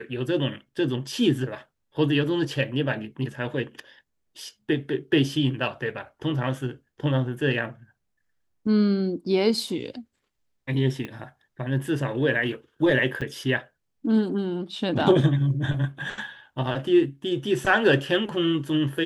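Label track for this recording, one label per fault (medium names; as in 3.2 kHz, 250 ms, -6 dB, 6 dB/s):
11.050000	11.050000	pop -21 dBFS
13.210000	13.220000	dropout 6.2 ms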